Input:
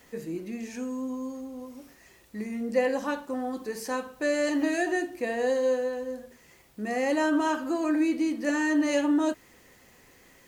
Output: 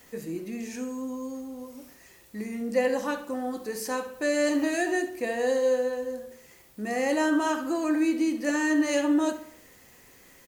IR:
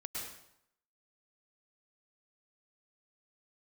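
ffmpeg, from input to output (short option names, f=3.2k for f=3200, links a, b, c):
-filter_complex "[0:a]highshelf=f=6.7k:g=7,asplit=2[a][b];[b]adelay=68,lowpass=f=4.7k:p=1,volume=-11.5dB,asplit=2[c][d];[d]adelay=68,lowpass=f=4.7k:p=1,volume=0.5,asplit=2[e][f];[f]adelay=68,lowpass=f=4.7k:p=1,volume=0.5,asplit=2[g][h];[h]adelay=68,lowpass=f=4.7k:p=1,volume=0.5,asplit=2[i][j];[j]adelay=68,lowpass=f=4.7k:p=1,volume=0.5[k];[c][e][g][i][k]amix=inputs=5:normalize=0[l];[a][l]amix=inputs=2:normalize=0"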